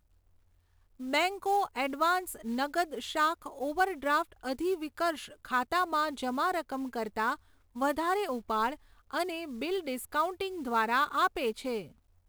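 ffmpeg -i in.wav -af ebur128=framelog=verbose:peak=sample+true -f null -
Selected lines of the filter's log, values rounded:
Integrated loudness:
  I:         -31.4 LUFS
  Threshold: -41.6 LUFS
Loudness range:
  LRA:         2.3 LU
  Threshold: -51.8 LUFS
  LRA low:   -33.0 LUFS
  LRA high:  -30.7 LUFS
Sample peak:
  Peak:      -14.7 dBFS
True peak:
  Peak:      -14.4 dBFS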